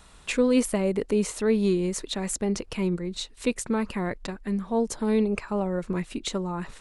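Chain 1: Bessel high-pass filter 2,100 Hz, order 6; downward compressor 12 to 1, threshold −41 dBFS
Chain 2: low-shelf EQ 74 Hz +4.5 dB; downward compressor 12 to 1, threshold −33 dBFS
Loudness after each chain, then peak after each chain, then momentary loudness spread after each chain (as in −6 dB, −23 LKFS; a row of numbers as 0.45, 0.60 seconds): −45.5, −38.0 LKFS; −22.5, −19.0 dBFS; 6, 3 LU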